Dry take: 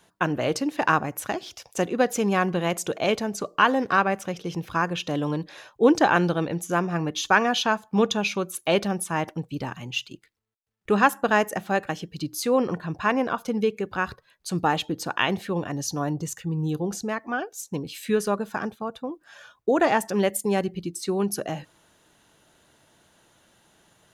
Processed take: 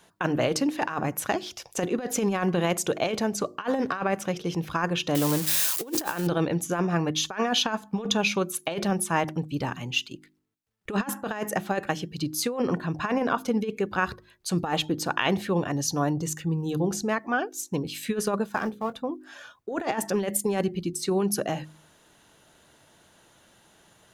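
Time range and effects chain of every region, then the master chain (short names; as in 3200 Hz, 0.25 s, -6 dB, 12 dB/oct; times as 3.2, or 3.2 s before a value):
5.15–6.27 switching spikes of -20.5 dBFS + high shelf 5200 Hz +5 dB
18.46–18.94 G.711 law mismatch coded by A + notches 60/120/180/240/300/360/420/480/540 Hz + doubler 23 ms -13.5 dB
whole clip: de-hum 51.68 Hz, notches 7; negative-ratio compressor -24 dBFS, ratio -0.5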